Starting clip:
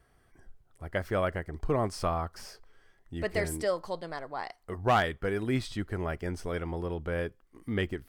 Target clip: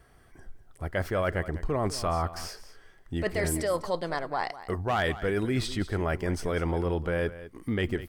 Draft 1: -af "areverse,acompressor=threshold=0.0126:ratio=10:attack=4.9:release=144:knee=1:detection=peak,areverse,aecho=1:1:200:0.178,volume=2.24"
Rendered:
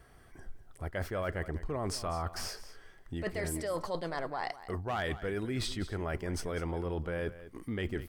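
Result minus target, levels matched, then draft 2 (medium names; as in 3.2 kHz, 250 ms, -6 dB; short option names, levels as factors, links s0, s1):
compression: peak gain reduction +7 dB
-af "areverse,acompressor=threshold=0.0316:ratio=10:attack=4.9:release=144:knee=1:detection=peak,areverse,aecho=1:1:200:0.178,volume=2.24"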